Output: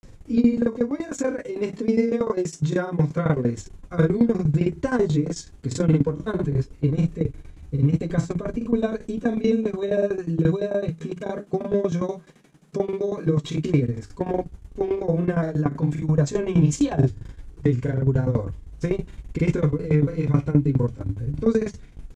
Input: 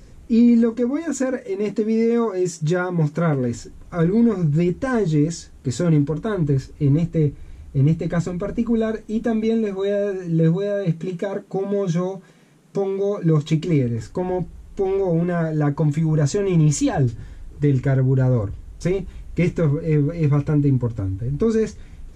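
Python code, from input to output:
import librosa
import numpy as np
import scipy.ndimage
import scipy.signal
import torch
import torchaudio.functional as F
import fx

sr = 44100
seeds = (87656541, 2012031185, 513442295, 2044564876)

y = fx.doubler(x, sr, ms=40.0, db=-12.5)
y = fx.tremolo_shape(y, sr, shape='saw_down', hz=11.0, depth_pct=90)
y = fx.granulator(y, sr, seeds[0], grain_ms=100.0, per_s=20.0, spray_ms=31.0, spread_st=0)
y = y * 10.0 ** (3.0 / 20.0)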